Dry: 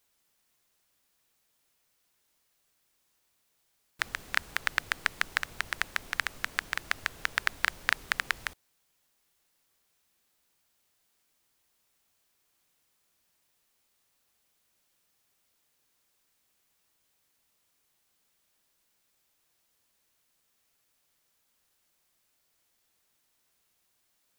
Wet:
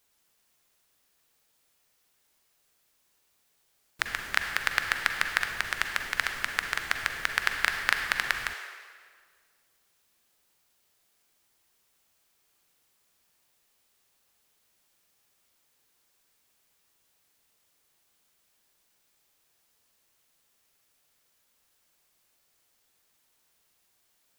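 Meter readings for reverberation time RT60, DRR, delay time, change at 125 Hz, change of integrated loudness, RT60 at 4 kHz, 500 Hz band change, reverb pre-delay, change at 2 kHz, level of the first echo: 1.8 s, 4.5 dB, no echo audible, +2.0 dB, +3.0 dB, 1.5 s, +3.5 dB, 39 ms, +3.5 dB, no echo audible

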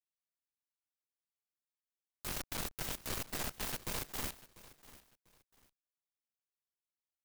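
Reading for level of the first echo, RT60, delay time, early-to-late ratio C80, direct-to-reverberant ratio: −18.5 dB, no reverb audible, 694 ms, no reverb audible, no reverb audible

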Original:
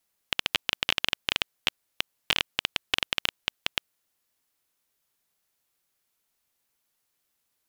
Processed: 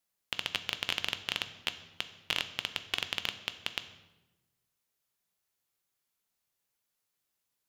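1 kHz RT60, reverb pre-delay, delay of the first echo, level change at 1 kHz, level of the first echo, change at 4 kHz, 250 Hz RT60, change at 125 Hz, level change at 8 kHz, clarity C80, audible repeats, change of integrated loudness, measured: 1.0 s, 3 ms, no echo audible, −6.0 dB, no echo audible, −6.0 dB, 1.4 s, −4.0 dB, −5.5 dB, 14.5 dB, no echo audible, −6.0 dB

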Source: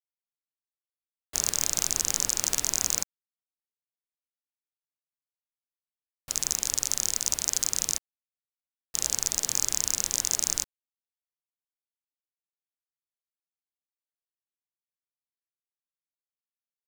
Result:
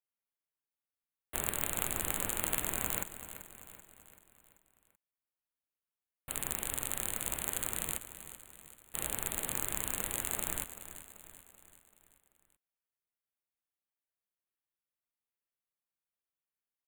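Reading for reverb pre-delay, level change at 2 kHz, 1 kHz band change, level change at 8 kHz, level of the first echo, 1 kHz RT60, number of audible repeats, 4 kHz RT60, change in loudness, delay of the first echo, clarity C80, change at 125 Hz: no reverb audible, 0.0 dB, +0.5 dB, −12.0 dB, −13.0 dB, no reverb audible, 4, no reverb audible, −8.5 dB, 385 ms, no reverb audible, +0.5 dB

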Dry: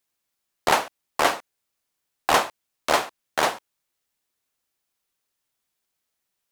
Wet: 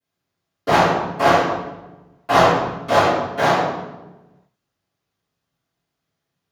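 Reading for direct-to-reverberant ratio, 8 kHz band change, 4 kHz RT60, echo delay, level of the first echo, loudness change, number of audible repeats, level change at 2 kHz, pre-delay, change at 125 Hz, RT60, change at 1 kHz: −17.5 dB, −3.5 dB, 0.80 s, no echo audible, no echo audible, +6.5 dB, no echo audible, +4.5 dB, 3 ms, +18.5 dB, 1.1 s, +7.0 dB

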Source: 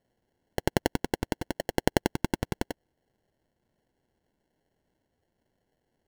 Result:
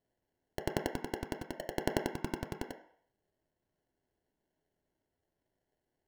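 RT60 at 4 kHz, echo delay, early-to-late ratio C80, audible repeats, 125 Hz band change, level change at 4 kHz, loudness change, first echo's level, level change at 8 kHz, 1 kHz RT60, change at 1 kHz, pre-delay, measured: 0.65 s, no echo audible, 13.0 dB, no echo audible, −9.0 dB, −9.0 dB, −7.5 dB, no echo audible, −9.0 dB, 0.65 s, −7.5 dB, 3 ms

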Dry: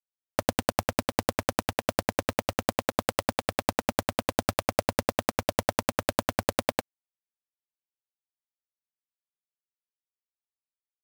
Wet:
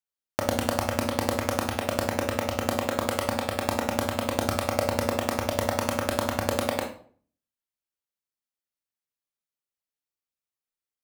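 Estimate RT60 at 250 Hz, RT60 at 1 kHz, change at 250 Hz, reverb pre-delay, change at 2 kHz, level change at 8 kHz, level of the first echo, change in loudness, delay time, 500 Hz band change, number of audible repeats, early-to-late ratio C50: 0.55 s, 0.45 s, +3.0 dB, 21 ms, +1.5 dB, +1.0 dB, no echo audible, +2.0 dB, no echo audible, +2.5 dB, no echo audible, 7.0 dB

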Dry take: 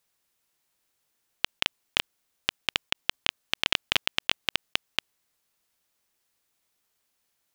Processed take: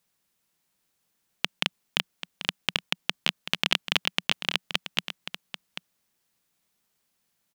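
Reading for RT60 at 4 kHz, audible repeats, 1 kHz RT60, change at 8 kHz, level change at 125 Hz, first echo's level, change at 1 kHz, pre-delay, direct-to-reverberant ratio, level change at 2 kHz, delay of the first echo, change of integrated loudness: no reverb audible, 1, no reverb audible, +0.5 dB, +5.5 dB, −11.0 dB, +0.5 dB, no reverb audible, no reverb audible, +0.5 dB, 788 ms, 0.0 dB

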